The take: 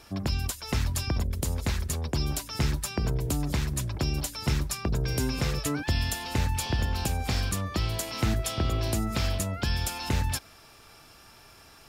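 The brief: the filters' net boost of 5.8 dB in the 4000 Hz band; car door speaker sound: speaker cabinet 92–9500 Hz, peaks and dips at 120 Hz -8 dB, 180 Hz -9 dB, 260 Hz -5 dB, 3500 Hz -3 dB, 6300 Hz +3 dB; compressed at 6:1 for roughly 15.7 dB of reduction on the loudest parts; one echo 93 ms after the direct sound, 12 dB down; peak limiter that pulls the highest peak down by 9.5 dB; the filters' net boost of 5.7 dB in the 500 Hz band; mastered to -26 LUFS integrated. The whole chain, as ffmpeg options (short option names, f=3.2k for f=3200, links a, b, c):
-af "equalizer=f=500:t=o:g=8,equalizer=f=4k:t=o:g=8.5,acompressor=threshold=-39dB:ratio=6,alimiter=level_in=9dB:limit=-24dB:level=0:latency=1,volume=-9dB,highpass=92,equalizer=f=120:t=q:w=4:g=-8,equalizer=f=180:t=q:w=4:g=-9,equalizer=f=260:t=q:w=4:g=-5,equalizer=f=3.5k:t=q:w=4:g=-3,equalizer=f=6.3k:t=q:w=4:g=3,lowpass=f=9.5k:w=0.5412,lowpass=f=9.5k:w=1.3066,aecho=1:1:93:0.251,volume=18.5dB"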